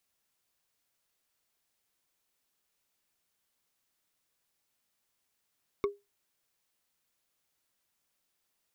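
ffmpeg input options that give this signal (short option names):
-f lavfi -i "aevalsrc='0.0794*pow(10,-3*t/0.21)*sin(2*PI*405*t)+0.0398*pow(10,-3*t/0.062)*sin(2*PI*1116.6*t)+0.02*pow(10,-3*t/0.028)*sin(2*PI*2188.6*t)+0.01*pow(10,-3*t/0.015)*sin(2*PI*3617.9*t)+0.00501*pow(10,-3*t/0.009)*sin(2*PI*5402.7*t)':d=0.45:s=44100"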